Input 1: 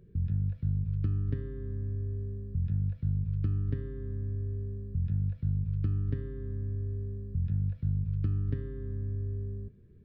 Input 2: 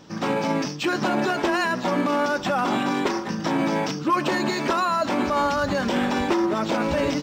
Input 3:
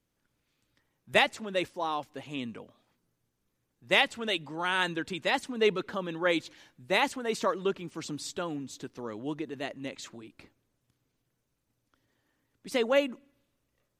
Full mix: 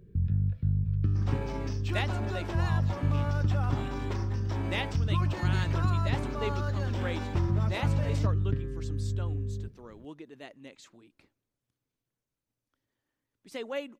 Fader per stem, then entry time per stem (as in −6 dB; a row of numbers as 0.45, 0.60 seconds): +2.5, −15.0, −10.0 decibels; 0.00, 1.05, 0.80 seconds